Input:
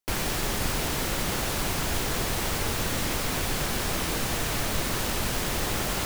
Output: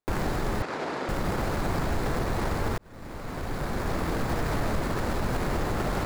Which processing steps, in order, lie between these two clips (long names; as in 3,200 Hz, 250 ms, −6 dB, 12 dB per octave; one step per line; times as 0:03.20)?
running median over 15 samples
0:02.78–0:04.17: fade in
brickwall limiter −22.5 dBFS, peak gain reduction 8 dB
0:00.62–0:01.09: band-pass filter 310–5,400 Hz
level +4 dB